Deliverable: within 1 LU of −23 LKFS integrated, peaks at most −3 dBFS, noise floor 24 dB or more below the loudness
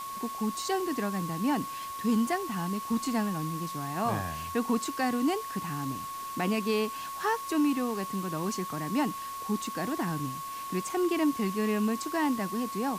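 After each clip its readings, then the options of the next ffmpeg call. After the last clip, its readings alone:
interfering tone 1,100 Hz; level of the tone −36 dBFS; background noise floor −38 dBFS; target noise floor −55 dBFS; integrated loudness −31.0 LKFS; sample peak −17.0 dBFS; target loudness −23.0 LKFS
→ -af "bandreject=frequency=1100:width=30"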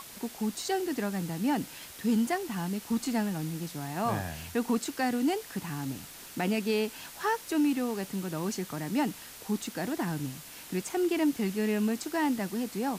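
interfering tone none found; background noise floor −47 dBFS; target noise floor −56 dBFS
→ -af "afftdn=noise_reduction=9:noise_floor=-47"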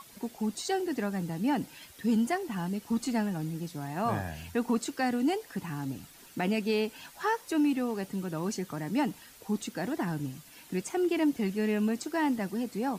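background noise floor −53 dBFS; target noise floor −56 dBFS
→ -af "afftdn=noise_reduction=6:noise_floor=-53"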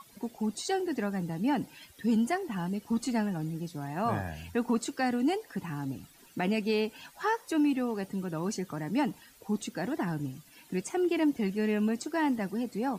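background noise floor −58 dBFS; integrated loudness −31.5 LKFS; sample peak −18.0 dBFS; target loudness −23.0 LKFS
→ -af "volume=8.5dB"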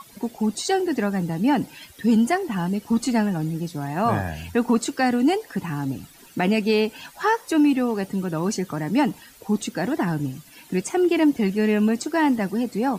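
integrated loudness −23.0 LKFS; sample peak −9.5 dBFS; background noise floor −49 dBFS

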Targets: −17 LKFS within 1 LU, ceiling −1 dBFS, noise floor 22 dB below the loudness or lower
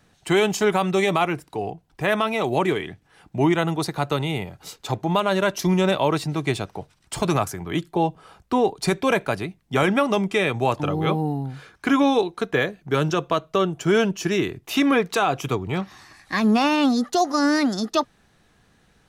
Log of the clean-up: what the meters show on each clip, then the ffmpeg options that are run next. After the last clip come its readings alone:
integrated loudness −22.5 LKFS; sample peak −8.0 dBFS; target loudness −17.0 LKFS
→ -af "volume=5.5dB"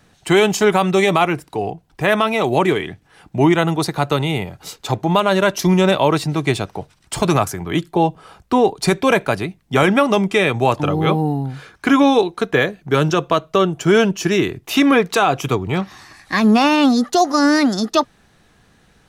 integrated loudness −17.0 LKFS; sample peak −2.5 dBFS; background noise floor −56 dBFS

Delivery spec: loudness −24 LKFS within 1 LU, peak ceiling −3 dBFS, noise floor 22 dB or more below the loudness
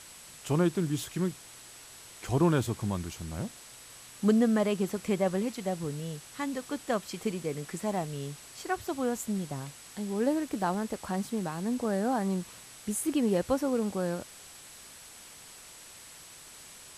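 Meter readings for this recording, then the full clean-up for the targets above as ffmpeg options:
interfering tone 7,900 Hz; level of the tone −55 dBFS; background noise floor −50 dBFS; target noise floor −53 dBFS; integrated loudness −31.0 LKFS; sample peak −12.0 dBFS; target loudness −24.0 LKFS
→ -af "bandreject=frequency=7900:width=30"
-af "afftdn=noise_reduction=6:noise_floor=-50"
-af "volume=7dB"

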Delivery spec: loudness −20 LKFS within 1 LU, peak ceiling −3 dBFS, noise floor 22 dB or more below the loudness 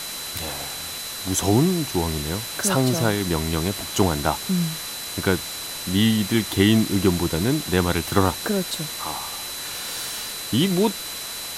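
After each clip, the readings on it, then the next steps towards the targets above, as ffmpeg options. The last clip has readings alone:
interfering tone 4,000 Hz; level of the tone −35 dBFS; background noise floor −32 dBFS; target noise floor −45 dBFS; integrated loudness −23.0 LKFS; sample peak −2.5 dBFS; target loudness −20.0 LKFS
→ -af "bandreject=frequency=4000:width=30"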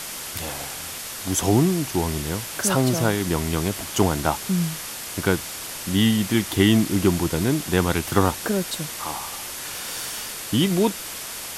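interfering tone none found; background noise floor −34 dBFS; target noise floor −46 dBFS
→ -af "afftdn=noise_reduction=12:noise_floor=-34"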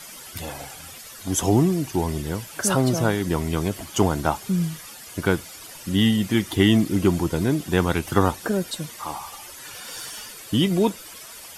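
background noise floor −41 dBFS; target noise floor −45 dBFS
→ -af "afftdn=noise_reduction=6:noise_floor=-41"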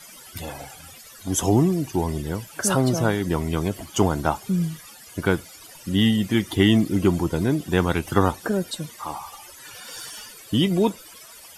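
background noise floor −45 dBFS; integrated loudness −23.0 LKFS; sample peak −3.0 dBFS; target loudness −20.0 LKFS
→ -af "volume=3dB,alimiter=limit=-3dB:level=0:latency=1"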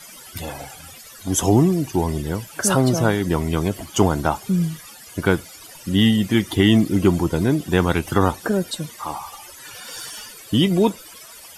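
integrated loudness −20.0 LKFS; sample peak −3.0 dBFS; background noise floor −42 dBFS

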